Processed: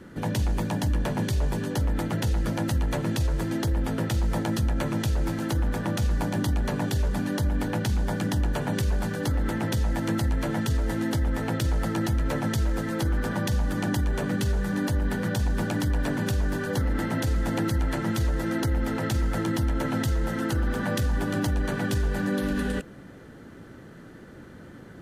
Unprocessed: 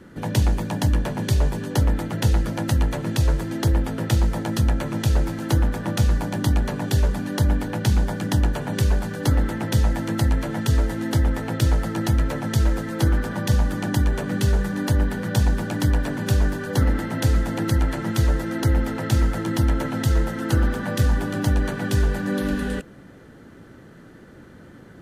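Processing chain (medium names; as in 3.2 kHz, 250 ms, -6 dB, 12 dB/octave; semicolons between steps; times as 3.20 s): peak limiter -18 dBFS, peak gain reduction 10 dB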